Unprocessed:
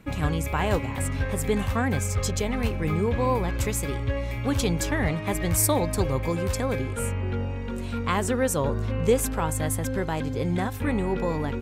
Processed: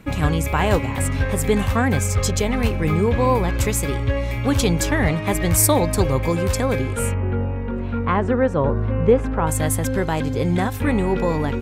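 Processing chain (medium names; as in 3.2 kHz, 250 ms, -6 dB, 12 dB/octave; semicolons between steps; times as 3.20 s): 7.14–9.47 s: low-pass 1.7 kHz 12 dB/octave; trim +6 dB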